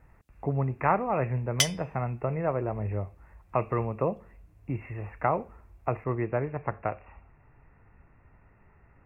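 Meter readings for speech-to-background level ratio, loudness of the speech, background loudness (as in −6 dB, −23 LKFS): −3.5 dB, −31.0 LKFS, −27.5 LKFS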